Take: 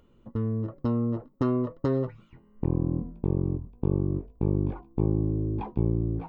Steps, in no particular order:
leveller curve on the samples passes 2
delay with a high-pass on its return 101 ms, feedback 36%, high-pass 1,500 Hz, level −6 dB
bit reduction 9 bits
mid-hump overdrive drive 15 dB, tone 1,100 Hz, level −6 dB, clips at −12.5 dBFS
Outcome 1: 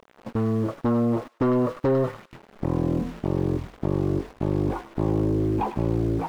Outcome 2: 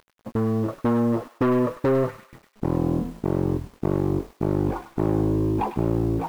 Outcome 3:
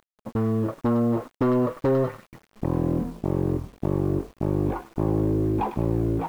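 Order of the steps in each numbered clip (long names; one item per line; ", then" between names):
bit reduction, then delay with a high-pass on its return, then leveller curve on the samples, then mid-hump overdrive
mid-hump overdrive, then leveller curve on the samples, then bit reduction, then delay with a high-pass on its return
delay with a high-pass on its return, then leveller curve on the samples, then mid-hump overdrive, then bit reduction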